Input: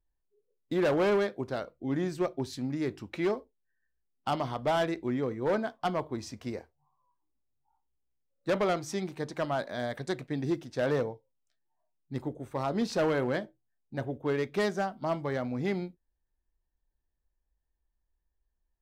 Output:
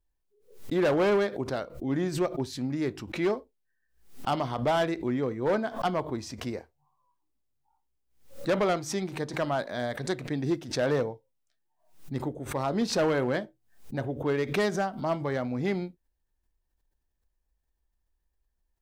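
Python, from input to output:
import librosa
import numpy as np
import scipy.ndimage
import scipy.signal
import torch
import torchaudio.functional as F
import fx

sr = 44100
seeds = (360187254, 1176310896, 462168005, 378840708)

y = fx.pre_swell(x, sr, db_per_s=120.0)
y = F.gain(torch.from_numpy(y), 2.0).numpy()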